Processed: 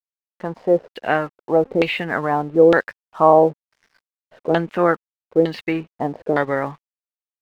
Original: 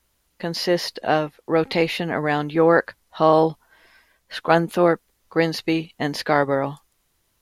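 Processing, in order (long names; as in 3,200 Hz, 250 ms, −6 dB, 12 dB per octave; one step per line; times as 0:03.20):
auto-filter low-pass saw down 1.1 Hz 400–3,400 Hz
dead-zone distortion −46 dBFS
level −1 dB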